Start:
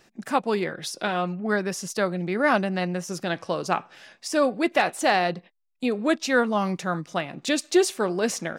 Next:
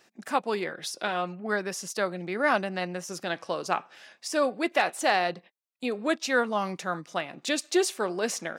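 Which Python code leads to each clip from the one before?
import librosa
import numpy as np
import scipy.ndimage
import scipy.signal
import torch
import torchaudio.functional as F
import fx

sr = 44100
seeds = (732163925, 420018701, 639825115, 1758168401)

y = fx.highpass(x, sr, hz=360.0, slope=6)
y = y * 10.0 ** (-2.0 / 20.0)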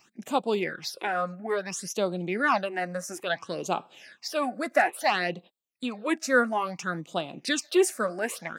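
y = fx.phaser_stages(x, sr, stages=8, low_hz=110.0, high_hz=1900.0, hz=0.59, feedback_pct=25)
y = y * 10.0 ** (3.5 / 20.0)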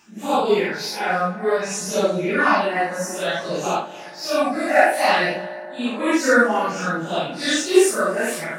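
y = fx.phase_scramble(x, sr, seeds[0], window_ms=200)
y = y + 10.0 ** (-23.5 / 20.0) * np.pad(y, (int(302 * sr / 1000.0), 0))[:len(y)]
y = fx.rev_fdn(y, sr, rt60_s=3.6, lf_ratio=1.0, hf_ratio=0.35, size_ms=10.0, drr_db=13.5)
y = y * 10.0 ** (7.5 / 20.0)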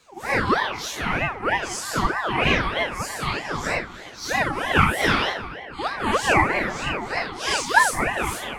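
y = fx.ring_lfo(x, sr, carrier_hz=970.0, swing_pct=45, hz=3.2)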